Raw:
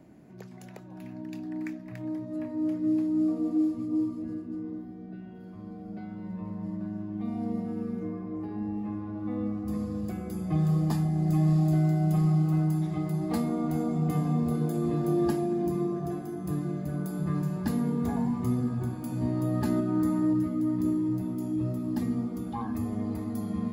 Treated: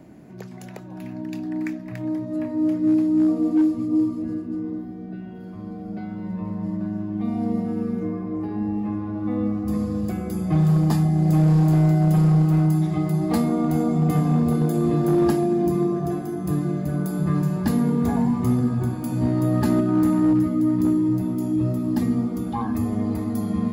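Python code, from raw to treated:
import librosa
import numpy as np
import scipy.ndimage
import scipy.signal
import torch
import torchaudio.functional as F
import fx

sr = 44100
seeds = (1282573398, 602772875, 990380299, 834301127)

y = np.clip(x, -10.0 ** (-20.5 / 20.0), 10.0 ** (-20.5 / 20.0))
y = y * 10.0 ** (7.5 / 20.0)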